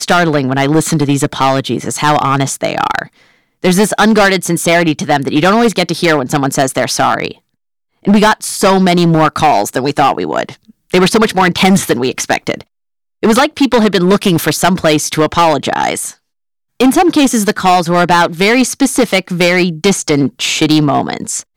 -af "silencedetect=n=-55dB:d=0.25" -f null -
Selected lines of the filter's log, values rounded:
silence_start: 7.54
silence_end: 7.93 | silence_duration: 0.39
silence_start: 12.67
silence_end: 13.22 | silence_duration: 0.55
silence_start: 16.19
silence_end: 16.80 | silence_duration: 0.61